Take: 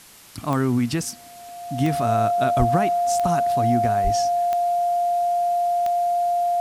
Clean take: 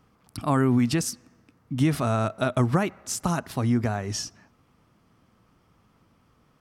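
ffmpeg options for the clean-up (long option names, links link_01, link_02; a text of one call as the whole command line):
ffmpeg -i in.wav -filter_complex "[0:a]adeclick=threshold=4,bandreject=frequency=700:width=30,asplit=3[link_01][link_02][link_03];[link_01]afade=type=out:start_time=2.58:duration=0.02[link_04];[link_02]highpass=frequency=140:width=0.5412,highpass=frequency=140:width=1.3066,afade=type=in:start_time=2.58:duration=0.02,afade=type=out:start_time=2.7:duration=0.02[link_05];[link_03]afade=type=in:start_time=2.7:duration=0.02[link_06];[link_04][link_05][link_06]amix=inputs=3:normalize=0,asplit=3[link_07][link_08][link_09];[link_07]afade=type=out:start_time=4.03:duration=0.02[link_10];[link_08]highpass=frequency=140:width=0.5412,highpass=frequency=140:width=1.3066,afade=type=in:start_time=4.03:duration=0.02,afade=type=out:start_time=4.15:duration=0.02[link_11];[link_09]afade=type=in:start_time=4.15:duration=0.02[link_12];[link_10][link_11][link_12]amix=inputs=3:normalize=0,afwtdn=0.005" out.wav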